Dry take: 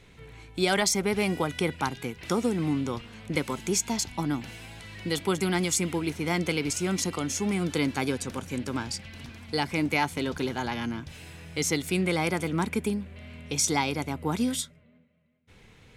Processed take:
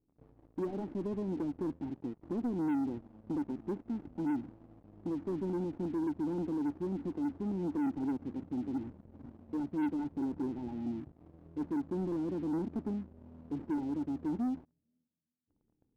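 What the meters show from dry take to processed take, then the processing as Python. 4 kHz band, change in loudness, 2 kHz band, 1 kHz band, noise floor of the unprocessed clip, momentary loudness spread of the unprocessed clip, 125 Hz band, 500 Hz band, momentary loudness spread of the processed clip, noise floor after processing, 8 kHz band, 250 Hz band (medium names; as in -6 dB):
under -30 dB, -8.0 dB, -24.5 dB, -13.5 dB, -56 dBFS, 12 LU, -11.0 dB, -9.5 dB, 9 LU, -81 dBFS, under -35 dB, -4.0 dB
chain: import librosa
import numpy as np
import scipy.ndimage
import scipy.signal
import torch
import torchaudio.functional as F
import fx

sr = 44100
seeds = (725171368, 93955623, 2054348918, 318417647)

y = scipy.signal.medfilt(x, 41)
y = fx.formant_cascade(y, sr, vowel='u')
y = fx.leveller(y, sr, passes=3)
y = F.gain(torch.from_numpy(y), -6.5).numpy()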